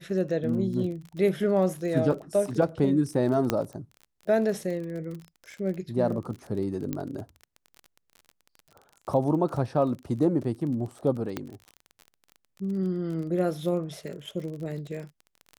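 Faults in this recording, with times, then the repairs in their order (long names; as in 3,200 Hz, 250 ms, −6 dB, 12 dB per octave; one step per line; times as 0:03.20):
surface crackle 30 per second −35 dBFS
0:03.50: click −9 dBFS
0:06.93: click −17 dBFS
0:11.37: click −16 dBFS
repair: click removal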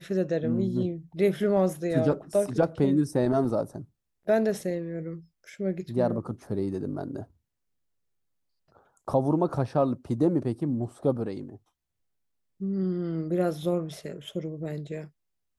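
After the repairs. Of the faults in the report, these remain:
0:03.50: click
0:11.37: click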